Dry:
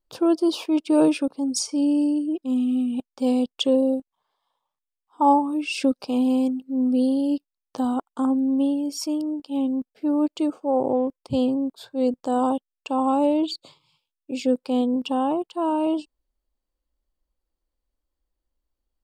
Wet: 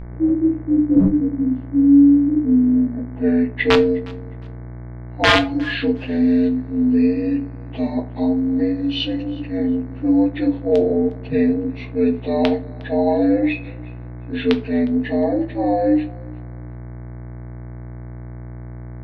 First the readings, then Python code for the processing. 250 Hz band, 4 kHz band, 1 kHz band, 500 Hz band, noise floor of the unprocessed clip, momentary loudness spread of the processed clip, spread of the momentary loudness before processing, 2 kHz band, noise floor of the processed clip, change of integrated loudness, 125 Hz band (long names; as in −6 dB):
+5.5 dB, +6.0 dB, −1.5 dB, +5.0 dB, below −85 dBFS, 20 LU, 7 LU, +15.0 dB, −33 dBFS, +5.0 dB, +20.5 dB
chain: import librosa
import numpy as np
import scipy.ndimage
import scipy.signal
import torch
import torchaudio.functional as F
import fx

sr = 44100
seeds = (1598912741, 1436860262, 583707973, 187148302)

p1 = fx.partial_stretch(x, sr, pct=80)
p2 = scipy.signal.sosfilt(scipy.signal.butter(2, 6200.0, 'lowpass', fs=sr, output='sos'), p1)
p3 = fx.rider(p2, sr, range_db=3, speed_s=2.0)
p4 = p2 + F.gain(torch.from_numpy(p3), -2.5).numpy()
p5 = (np.mod(10.0 ** (7.0 / 20.0) * p4 + 1.0, 2.0) - 1.0) / 10.0 ** (7.0 / 20.0)
p6 = fx.filter_sweep_lowpass(p5, sr, from_hz=250.0, to_hz=3400.0, start_s=2.29, end_s=3.7, q=1.9)
p7 = fx.dmg_buzz(p6, sr, base_hz=60.0, harmonics=38, level_db=-30.0, tilt_db=-8, odd_only=False)
p8 = p7 + fx.echo_feedback(p7, sr, ms=359, feedback_pct=23, wet_db=-23.0, dry=0)
p9 = fx.room_shoebox(p8, sr, seeds[0], volume_m3=150.0, walls='furnished', distance_m=0.7)
y = F.gain(torch.from_numpy(p9), -2.0).numpy()